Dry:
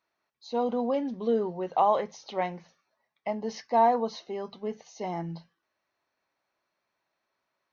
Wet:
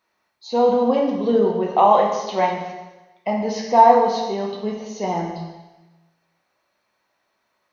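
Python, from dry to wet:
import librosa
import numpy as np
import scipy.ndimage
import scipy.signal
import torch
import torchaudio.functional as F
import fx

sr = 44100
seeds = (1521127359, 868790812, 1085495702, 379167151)

y = fx.rev_plate(x, sr, seeds[0], rt60_s=1.1, hf_ratio=1.0, predelay_ms=0, drr_db=-0.5)
y = y * 10.0 ** (7.0 / 20.0)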